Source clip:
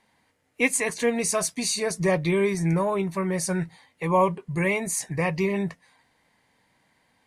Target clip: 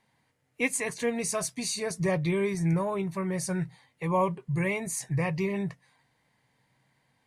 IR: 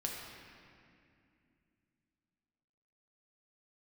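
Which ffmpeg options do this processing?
-af "equalizer=frequency=130:width_type=o:width=0.39:gain=13,volume=-5.5dB"

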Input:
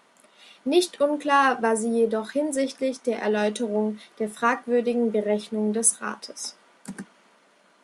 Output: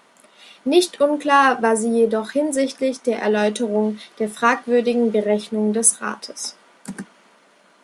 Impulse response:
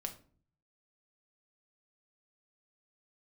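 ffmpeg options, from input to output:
-filter_complex "[0:a]asplit=3[link_01][link_02][link_03];[link_01]afade=type=out:start_time=3.82:duration=0.02[link_04];[link_02]adynamicequalizer=threshold=0.00631:dfrequency=4200:dqfactor=0.98:tfrequency=4200:tqfactor=0.98:attack=5:release=100:ratio=0.375:range=3:mode=boostabove:tftype=bell,afade=type=in:start_time=3.82:duration=0.02,afade=type=out:start_time=5.24:duration=0.02[link_05];[link_03]afade=type=in:start_time=5.24:duration=0.02[link_06];[link_04][link_05][link_06]amix=inputs=3:normalize=0,volume=5dB"

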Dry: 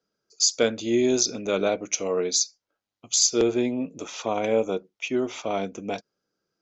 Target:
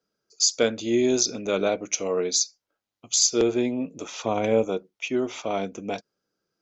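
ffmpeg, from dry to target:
ffmpeg -i in.wav -filter_complex "[0:a]asettb=1/sr,asplit=3[link_01][link_02][link_03];[link_01]atrim=end=4.224[link_04];[link_02]atrim=start=4.22:end=4.65,asetpts=PTS-STARTPTS,afade=type=in:duration=0.004:curve=qsin,afade=type=out:start_time=0.426:duration=0.004:curve=qsin,lowshelf=frequency=160:gain=10[link_05];[link_03]atrim=start=4.646[link_06];[link_04][link_05]acrossfade=duration=0.004:curve1=hsin:curve2=qsin[link_07];[link_07][link_06]acrossfade=duration=0.004:curve1=qsin:curve2=hsin" out.wav

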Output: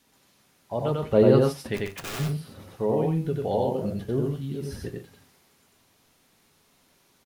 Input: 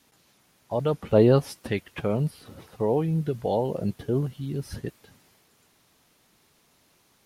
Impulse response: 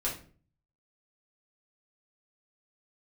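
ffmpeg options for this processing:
-filter_complex "[0:a]asplit=3[link_01][link_02][link_03];[link_01]afade=type=out:start_time=1.76:duration=0.02[link_04];[link_02]aeval=exprs='(mod(26.6*val(0)+1,2)-1)/26.6':channel_layout=same,afade=type=in:start_time=1.76:duration=0.02,afade=type=out:start_time=2.18:duration=0.02[link_05];[link_03]afade=type=in:start_time=2.18:duration=0.02[link_06];[link_04][link_05][link_06]amix=inputs=3:normalize=0,aecho=1:1:93.29|134.1:0.794|0.282,asplit=2[link_07][link_08];[1:a]atrim=start_sample=2205,atrim=end_sample=4410[link_09];[link_08][link_09]afir=irnorm=-1:irlink=0,volume=-12.5dB[link_10];[link_07][link_10]amix=inputs=2:normalize=0,volume=-4dB"

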